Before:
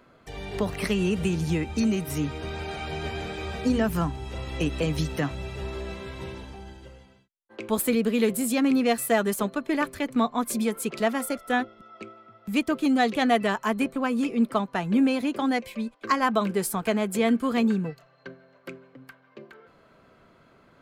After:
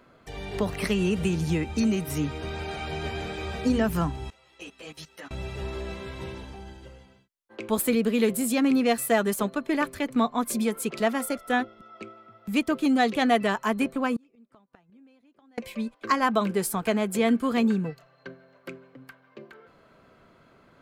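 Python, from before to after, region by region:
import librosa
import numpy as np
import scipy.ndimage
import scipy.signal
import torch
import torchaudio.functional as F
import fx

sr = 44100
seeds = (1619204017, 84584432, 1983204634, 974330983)

y = fx.chain(x, sr, fx.highpass(hz=1000.0, slope=6),
    fx.level_steps(step_db=19),
    fx.ensemble(), at=(4.3, 5.31))
y = fx.chain(y, sr, fx.high_shelf(hz=9900.0, db=-12.0),
    fx.gate_flip(shuts_db=-24.0, range_db=-34), at=(14.16, 15.58))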